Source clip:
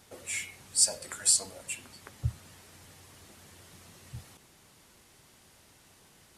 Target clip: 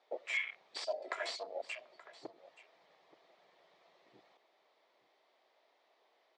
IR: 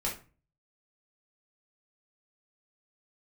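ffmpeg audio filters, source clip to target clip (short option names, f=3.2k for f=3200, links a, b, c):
-filter_complex "[0:a]afwtdn=0.00794,asettb=1/sr,asplit=3[a][b][c];[a]atrim=end=0.744[d];[b]atrim=start=0.74:end=1.4,asetpts=PTS-STARTPTS,afade=t=in:d=0.004:c=qsin,afade=t=out:st=0.656:d=0.004:c=qsin,aecho=1:1:3:0.66,atrim=end_sample=29106[e];[c]atrim=start=1.396[f];[d][e]acrossfade=d=0.004:c1=hsin:c2=qsin[g];[g][f]acrossfade=d=0.004:c1=qsin:c2=hsin,acompressor=threshold=-32dB:ratio=5,aeval=exprs='0.0376*(abs(mod(val(0)/0.0376+3,4)-2)-1)':c=same,highpass=f=420:w=0.5412,highpass=f=420:w=1.3066,equalizer=f=660:t=q:w=4:g=7,equalizer=f=1.5k:t=q:w=4:g=-8,equalizer=f=2.8k:t=q:w=4:g=-8,lowpass=f=3.7k:w=0.5412,lowpass=f=3.7k:w=1.3066,aecho=1:1:877:0.126,volume=8dB"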